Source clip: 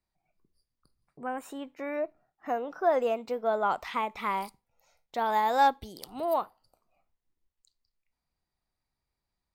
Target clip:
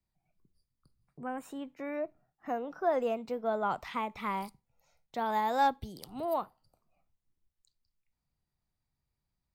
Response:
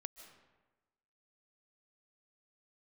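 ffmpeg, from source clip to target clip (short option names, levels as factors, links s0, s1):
-filter_complex "[0:a]equalizer=f=130:t=o:w=1.3:g=5.5,acrossover=split=250|740|2500[s0][s1][s2][s3];[s0]acontrast=31[s4];[s4][s1][s2][s3]amix=inputs=4:normalize=0,volume=0.596"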